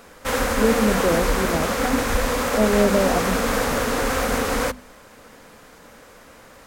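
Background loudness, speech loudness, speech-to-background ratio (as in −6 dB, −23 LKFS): −22.5 LKFS, −24.0 LKFS, −1.5 dB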